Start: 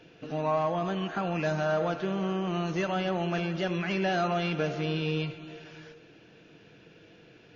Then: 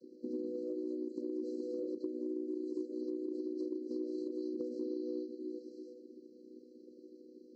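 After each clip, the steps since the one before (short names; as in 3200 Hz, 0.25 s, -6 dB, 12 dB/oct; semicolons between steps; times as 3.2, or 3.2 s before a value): chord vocoder major triad, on B3; FFT band-reject 600–4000 Hz; compressor 10:1, threshold -35 dBFS, peak gain reduction 13.5 dB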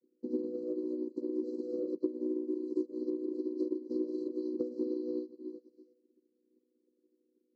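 high shelf 3500 Hz -9 dB; upward expander 2.5:1, over -54 dBFS; gain +9 dB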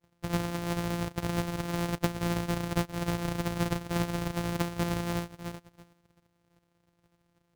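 sample sorter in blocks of 256 samples; gain +4 dB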